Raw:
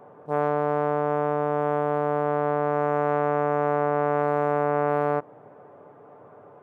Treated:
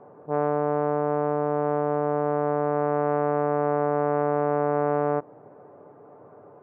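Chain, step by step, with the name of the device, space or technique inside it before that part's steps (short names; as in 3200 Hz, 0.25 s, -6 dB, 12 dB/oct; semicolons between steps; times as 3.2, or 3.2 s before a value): phone in a pocket (LPF 3000 Hz 12 dB/oct; bell 340 Hz +3 dB 0.56 oct; high shelf 2000 Hz -10 dB)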